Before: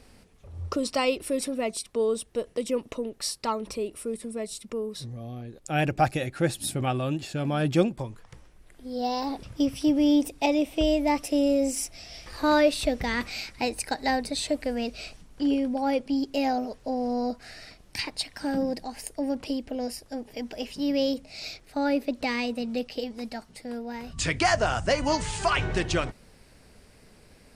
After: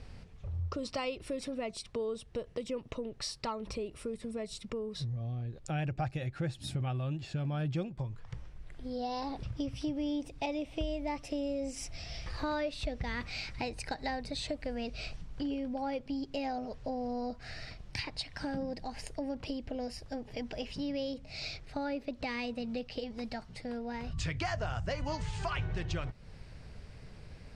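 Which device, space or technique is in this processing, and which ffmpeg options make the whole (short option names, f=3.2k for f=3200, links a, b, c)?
jukebox: -af "lowpass=5.3k,lowshelf=f=180:t=q:w=1.5:g=7.5,acompressor=threshold=-36dB:ratio=3"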